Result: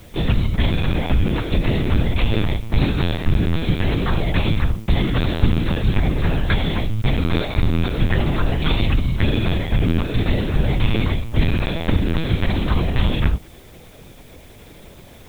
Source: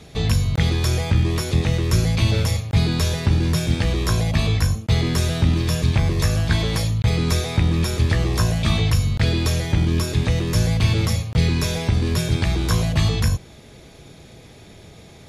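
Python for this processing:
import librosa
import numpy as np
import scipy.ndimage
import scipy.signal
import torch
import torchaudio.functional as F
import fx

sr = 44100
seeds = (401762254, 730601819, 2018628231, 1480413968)

y = fx.lpc_vocoder(x, sr, seeds[0], excitation='pitch_kept', order=10)
y = fx.dmg_noise_colour(y, sr, seeds[1], colour='white', level_db=-55.0)
y = y * librosa.db_to_amplitude(1.5)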